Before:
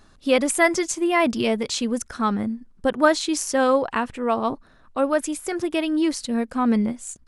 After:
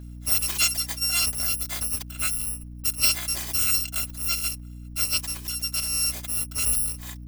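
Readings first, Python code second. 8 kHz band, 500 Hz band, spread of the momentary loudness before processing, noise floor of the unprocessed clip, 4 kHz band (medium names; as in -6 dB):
+6.0 dB, -27.0 dB, 8 LU, -54 dBFS, +5.0 dB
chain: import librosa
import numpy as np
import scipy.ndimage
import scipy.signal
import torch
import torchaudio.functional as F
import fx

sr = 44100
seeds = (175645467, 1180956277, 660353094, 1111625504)

y = fx.bit_reversed(x, sr, seeds[0], block=256)
y = fx.add_hum(y, sr, base_hz=60, snr_db=12)
y = y * librosa.db_to_amplitude(-4.5)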